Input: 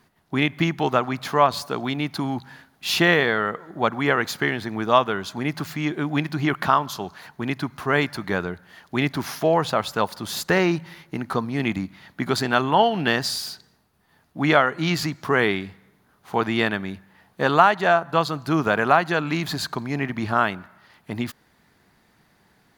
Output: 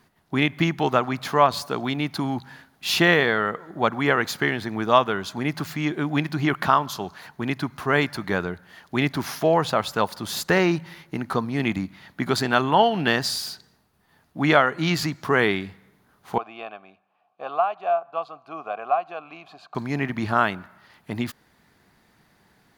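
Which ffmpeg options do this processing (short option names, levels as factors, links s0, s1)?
-filter_complex "[0:a]asettb=1/sr,asplit=3[s0][s1][s2];[s0]atrim=end=16.384[s3];[s1]atrim=start=16.38:end=19.75,asetpts=PTS-STARTPTS,afade=t=in:d=0.004:c=qsin,afade=t=out:st=3.366:d=0.004:c=qsin,asplit=3[s4][s5][s6];[s4]bandpass=f=730:t=q:w=8,volume=1[s7];[s5]bandpass=f=1090:t=q:w=8,volume=0.501[s8];[s6]bandpass=f=2440:t=q:w=8,volume=0.355[s9];[s7][s8][s9]amix=inputs=3:normalize=0[s10];[s2]atrim=start=19.746[s11];[s3][s10]acrossfade=d=0.004:c1=hsin:c2=qsin[s12];[s12][s11]acrossfade=d=0.004:c1=qsin:c2=hsin"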